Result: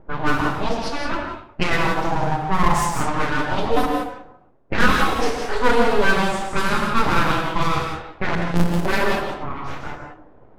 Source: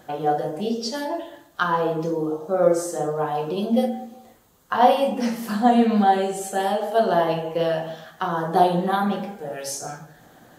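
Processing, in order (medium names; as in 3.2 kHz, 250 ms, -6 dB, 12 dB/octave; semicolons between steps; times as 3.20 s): 8.35–8.86 s: sorted samples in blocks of 256 samples; in parallel at -0.5 dB: peak limiter -15 dBFS, peak gain reduction 11 dB; on the sum: full-wave rectifier; level-controlled noise filter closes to 570 Hz, open at -13 dBFS; gated-style reverb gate 200 ms rising, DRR 3.5 dB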